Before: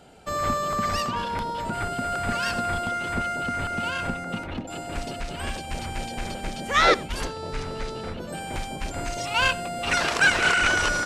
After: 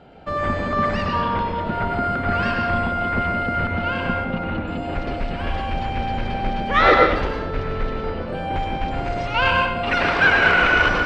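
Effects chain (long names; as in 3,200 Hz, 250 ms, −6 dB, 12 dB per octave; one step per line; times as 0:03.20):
high-frequency loss of the air 320 metres
convolution reverb RT60 1.0 s, pre-delay 91 ms, DRR 0.5 dB
level +5 dB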